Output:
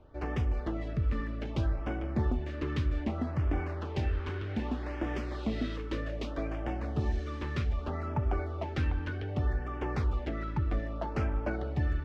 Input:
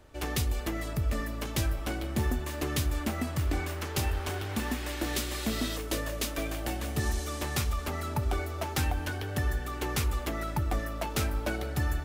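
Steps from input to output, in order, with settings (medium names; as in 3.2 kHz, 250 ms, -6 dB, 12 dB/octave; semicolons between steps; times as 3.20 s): treble shelf 3.5 kHz -10 dB; LFO notch sine 0.64 Hz 670–4200 Hz; distance through air 200 m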